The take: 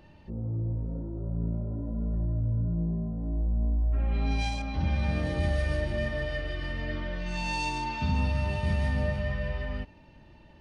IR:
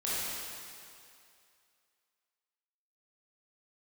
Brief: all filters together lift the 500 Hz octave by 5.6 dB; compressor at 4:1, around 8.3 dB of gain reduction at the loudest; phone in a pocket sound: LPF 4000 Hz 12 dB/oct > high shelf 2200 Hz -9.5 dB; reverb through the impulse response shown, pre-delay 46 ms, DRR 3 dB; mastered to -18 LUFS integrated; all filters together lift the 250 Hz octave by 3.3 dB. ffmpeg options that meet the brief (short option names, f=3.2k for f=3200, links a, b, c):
-filter_complex "[0:a]equalizer=f=250:t=o:g=3,equalizer=f=500:t=o:g=7.5,acompressor=threshold=-32dB:ratio=4,asplit=2[a][b];[1:a]atrim=start_sample=2205,adelay=46[c];[b][c]afir=irnorm=-1:irlink=0,volume=-10.5dB[d];[a][d]amix=inputs=2:normalize=0,lowpass=4k,highshelf=f=2.2k:g=-9.5,volume=17dB"